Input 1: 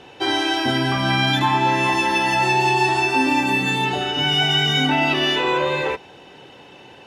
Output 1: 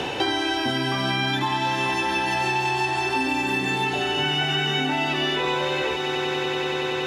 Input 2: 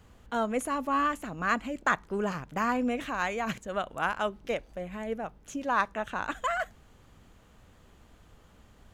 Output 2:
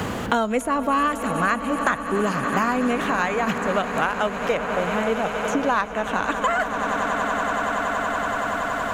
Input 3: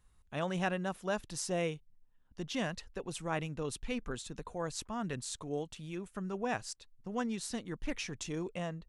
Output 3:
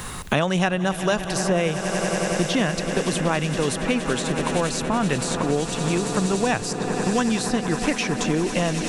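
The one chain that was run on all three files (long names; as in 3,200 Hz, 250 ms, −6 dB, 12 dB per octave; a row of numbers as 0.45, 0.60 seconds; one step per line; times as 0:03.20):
echo that builds up and dies away 94 ms, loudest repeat 8, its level −17 dB
multiband upward and downward compressor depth 100%
loudness normalisation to −23 LKFS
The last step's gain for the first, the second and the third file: −6.0, +7.0, +13.0 decibels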